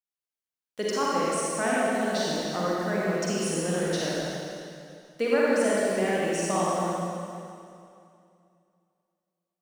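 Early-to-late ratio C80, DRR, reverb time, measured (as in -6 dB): -2.5 dB, -7.0 dB, 2.6 s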